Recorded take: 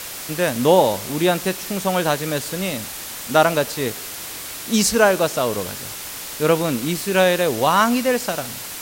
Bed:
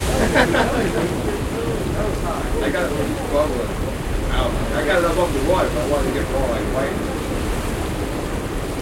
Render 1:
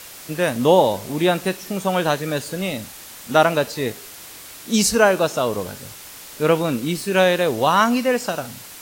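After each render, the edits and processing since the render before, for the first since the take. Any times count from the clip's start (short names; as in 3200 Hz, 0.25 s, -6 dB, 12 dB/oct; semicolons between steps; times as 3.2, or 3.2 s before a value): noise print and reduce 7 dB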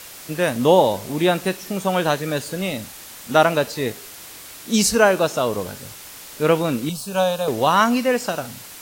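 6.89–7.48 fixed phaser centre 820 Hz, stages 4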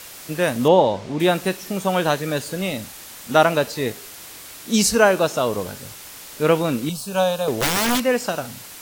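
0.68–1.2 air absorption 120 m; 7.6–8 wrapped overs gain 14 dB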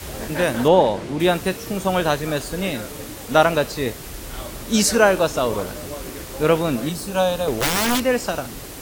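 add bed -13.5 dB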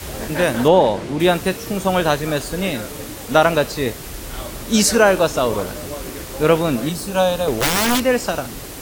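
gain +2.5 dB; limiter -2 dBFS, peak gain reduction 3 dB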